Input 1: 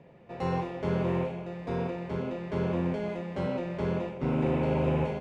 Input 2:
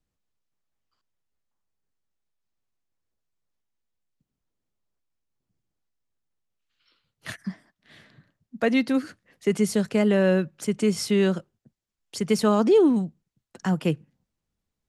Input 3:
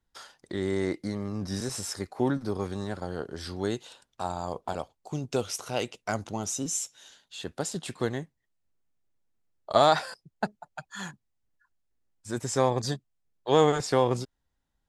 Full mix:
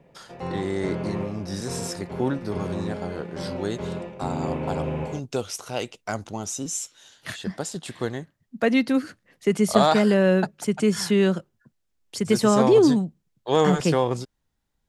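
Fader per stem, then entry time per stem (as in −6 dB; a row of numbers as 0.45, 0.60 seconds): −1.5, +1.5, +1.0 decibels; 0.00, 0.00, 0.00 seconds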